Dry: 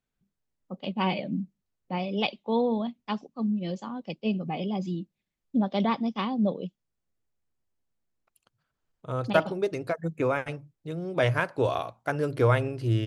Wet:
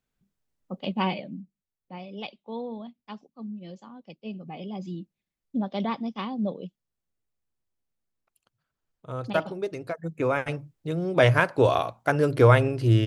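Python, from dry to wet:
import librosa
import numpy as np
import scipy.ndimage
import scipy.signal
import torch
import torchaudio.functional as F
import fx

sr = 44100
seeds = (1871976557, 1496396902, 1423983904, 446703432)

y = fx.gain(x, sr, db=fx.line((0.98, 2.5), (1.4, -9.5), (4.26, -9.5), (5.0, -3.0), (10.01, -3.0), (10.58, 5.5)))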